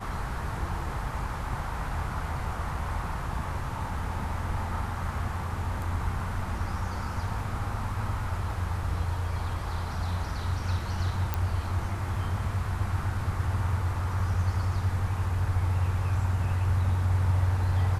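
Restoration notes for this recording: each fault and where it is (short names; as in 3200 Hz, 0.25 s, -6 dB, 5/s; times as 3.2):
11.34 pop -14 dBFS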